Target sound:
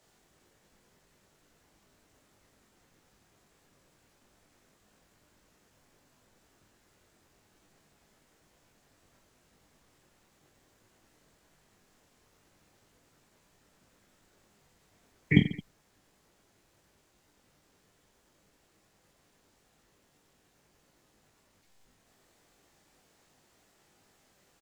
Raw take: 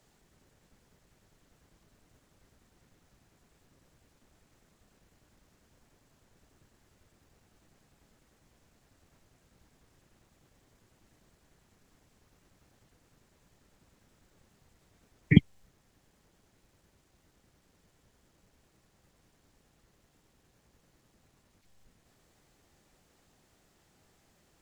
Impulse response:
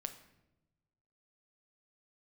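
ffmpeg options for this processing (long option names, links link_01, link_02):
-af "lowshelf=frequency=190:gain=-9,aecho=1:1:20|48|87.2|142.1|218.9:0.631|0.398|0.251|0.158|0.1"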